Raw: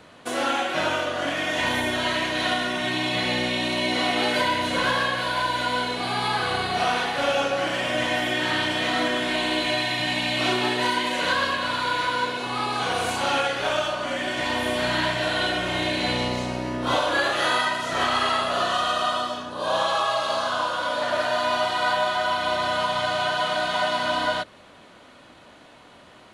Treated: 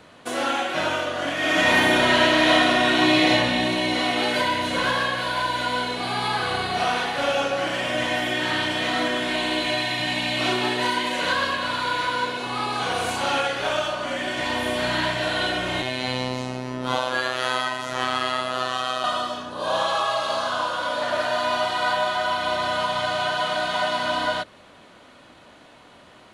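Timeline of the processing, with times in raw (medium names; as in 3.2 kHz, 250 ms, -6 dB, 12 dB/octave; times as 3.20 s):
1.37–3.31 s: reverb throw, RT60 2.2 s, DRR -6 dB
15.82–19.04 s: robot voice 127 Hz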